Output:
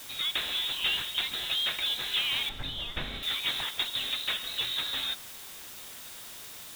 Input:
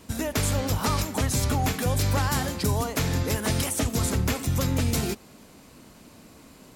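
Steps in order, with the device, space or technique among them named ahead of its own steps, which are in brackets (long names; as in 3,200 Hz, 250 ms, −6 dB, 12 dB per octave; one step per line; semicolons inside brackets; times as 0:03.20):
scrambled radio voice (band-pass filter 320–2,900 Hz; voice inversion scrambler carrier 4,000 Hz; white noise bed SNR 12 dB)
0:02.49–0:03.23: spectral tilt −4 dB per octave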